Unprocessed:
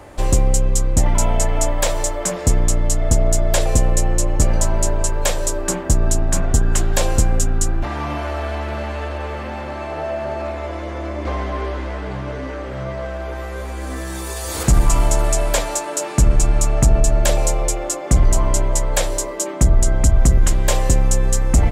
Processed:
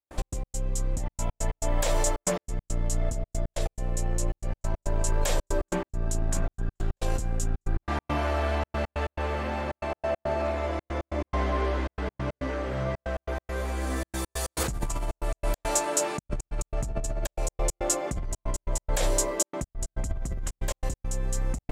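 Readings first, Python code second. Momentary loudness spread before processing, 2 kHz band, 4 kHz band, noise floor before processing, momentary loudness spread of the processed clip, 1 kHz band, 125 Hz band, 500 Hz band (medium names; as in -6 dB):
11 LU, -7.5 dB, -10.0 dB, -28 dBFS, 7 LU, -7.5 dB, -12.5 dB, -8.0 dB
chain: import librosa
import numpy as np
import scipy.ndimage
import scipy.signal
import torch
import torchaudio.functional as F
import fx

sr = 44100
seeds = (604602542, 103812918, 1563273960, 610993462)

y = fx.over_compress(x, sr, threshold_db=-19.0, ratio=-1.0)
y = fx.step_gate(y, sr, bpm=139, pattern='.x.x.xxxxx', floor_db=-60.0, edge_ms=4.5)
y = y * librosa.db_to_amplitude(-6.5)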